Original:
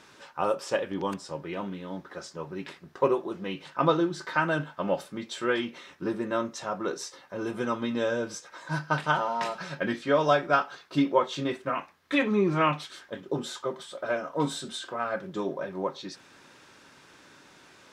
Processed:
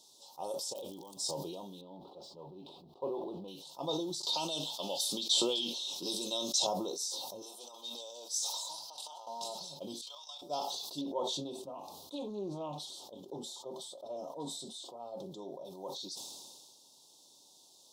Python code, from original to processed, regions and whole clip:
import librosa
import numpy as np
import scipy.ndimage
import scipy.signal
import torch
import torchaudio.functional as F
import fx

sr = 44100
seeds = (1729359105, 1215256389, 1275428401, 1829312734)

y = fx.over_compress(x, sr, threshold_db=-40.0, ratio=-1.0, at=(0.72, 1.31), fade=0.02)
y = fx.dmg_crackle(y, sr, seeds[0], per_s=82.0, level_db=-50.0, at=(0.72, 1.31), fade=0.02)
y = fx.chain(y, sr, fx.law_mismatch(coded='mu'),
    fx.air_absorb(metres=460.0), at=(1.81, 3.48))
y = fx.chain(y, sr, fx.weighting(curve='D'),
    fx.band_squash(depth_pct=100), at=(4.23, 6.67))
y = fx.chain(y, sr, fx.highpass(hz=790.0, slope=12),
    fx.over_compress(threshold_db=-36.0, ratio=-0.5),
    fx.transformer_sat(knee_hz=2200.0), at=(7.42, 9.27))
y = fx.chain(y, sr, fx.highpass(hz=1200.0, slope=24),
    fx.high_shelf(hz=6600.0, db=-7.0),
    fx.level_steps(step_db=11), at=(10.01, 10.42))
y = fx.chain(y, sr, fx.high_shelf(hz=2300.0, db=-12.0),
    fx.doppler_dist(depth_ms=0.12), at=(11.01, 15.65))
y = scipy.signal.sosfilt(scipy.signal.cheby1(3, 1.0, [860.0, 3700.0], 'bandstop', fs=sr, output='sos'), y)
y = fx.tilt_eq(y, sr, slope=4.0)
y = fx.sustainer(y, sr, db_per_s=29.0)
y = y * librosa.db_to_amplitude(-8.5)